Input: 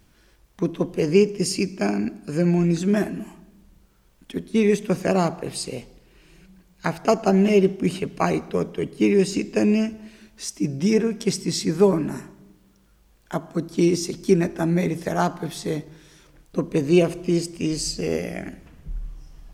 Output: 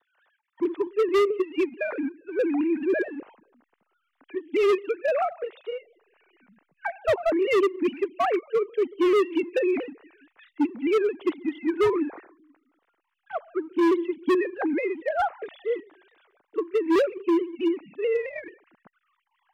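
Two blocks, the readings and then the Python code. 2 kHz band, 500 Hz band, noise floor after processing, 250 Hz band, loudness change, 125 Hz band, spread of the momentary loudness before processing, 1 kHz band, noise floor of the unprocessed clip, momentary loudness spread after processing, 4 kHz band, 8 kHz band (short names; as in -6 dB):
0.0 dB, -1.0 dB, -78 dBFS, -5.0 dB, -3.0 dB, under -25 dB, 14 LU, -0.5 dB, -58 dBFS, 12 LU, -8.5 dB, under -20 dB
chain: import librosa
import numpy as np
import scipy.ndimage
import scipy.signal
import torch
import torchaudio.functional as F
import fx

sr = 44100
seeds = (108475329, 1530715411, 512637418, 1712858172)

p1 = fx.sine_speech(x, sr)
p2 = fx.backlash(p1, sr, play_db=-32.5)
p3 = p1 + (p2 * librosa.db_to_amplitude(-9.0))
p4 = scipy.signal.sosfilt(scipy.signal.butter(2, 2100.0, 'lowpass', fs=sr, output='sos'), p3)
p5 = fx.tilt_eq(p4, sr, slope=2.5)
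p6 = np.clip(p5, -10.0 ** (-19.0 / 20.0), 10.0 ** (-19.0 / 20.0))
p7 = fx.vibrato_shape(p6, sr, shape='saw_down', rate_hz=4.6, depth_cents=100.0)
y = p7 * librosa.db_to_amplitude(1.5)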